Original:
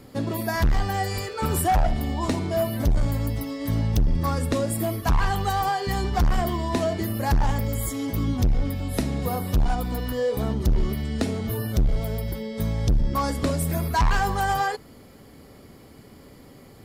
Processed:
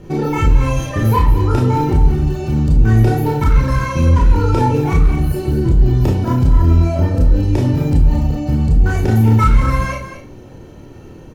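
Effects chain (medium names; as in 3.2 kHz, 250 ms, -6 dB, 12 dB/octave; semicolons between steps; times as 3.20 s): low-pass 11 kHz 24 dB/octave; tone controls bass +12 dB, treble -7 dB; comb 3 ms, depth 41%; in parallel at +2 dB: compressor with a negative ratio -8 dBFS, ratio -0.5; on the sum: peak limiter -1 dBFS, peak gain reduction 6.5 dB; tempo 1.1×; on a send: delay 302 ms -10.5 dB; on the sum: Schroeder reverb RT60 0.37 s, combs from 33 ms, DRR -1.5 dB; speed mistake 33 rpm record played at 45 rpm; trim -8.5 dB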